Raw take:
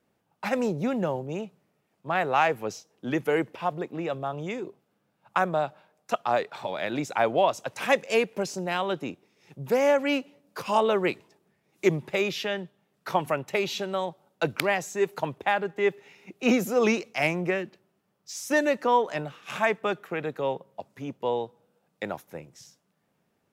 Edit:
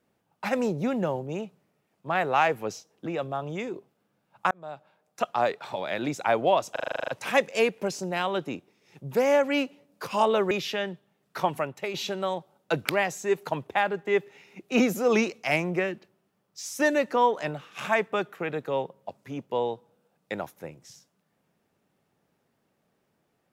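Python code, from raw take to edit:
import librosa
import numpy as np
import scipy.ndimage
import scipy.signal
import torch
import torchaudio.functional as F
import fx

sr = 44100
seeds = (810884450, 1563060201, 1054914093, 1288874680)

y = fx.edit(x, sr, fx.cut(start_s=3.06, length_s=0.91),
    fx.fade_in_span(start_s=5.42, length_s=0.78),
    fx.stutter(start_s=7.63, slice_s=0.04, count=10),
    fx.cut(start_s=11.06, length_s=1.16),
    fx.fade_out_to(start_s=13.11, length_s=0.54, floor_db=-7.5), tone=tone)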